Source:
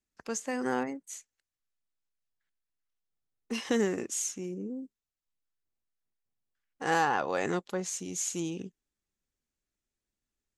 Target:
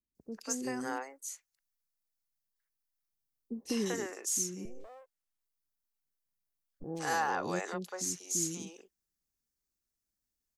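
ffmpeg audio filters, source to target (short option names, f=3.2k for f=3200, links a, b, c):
-filter_complex "[0:a]aexciter=amount=1.6:drive=7.3:freq=4.4k,asettb=1/sr,asplit=3[a][b][c];[a]atrim=end=4.654[d];[b]atrim=start=4.65:end=6.84,asetpts=PTS-STARTPTS,afade=t=in:d=0.004:c=qsin,afade=t=out:st=2.186:d=0.004:c=qsin,aeval=exprs='abs(val(0))':c=same[e];[c]atrim=start=6.836[f];[d][e]acrossfade=d=0.004:c1=hsin:c2=qsin[g];[g][f]acrossfade=d=0.004:c1=qsin:c2=hsin,acrossover=split=460|3000[h][i][j];[j]adelay=150[k];[i]adelay=190[l];[h][l][k]amix=inputs=3:normalize=0,volume=-3.5dB"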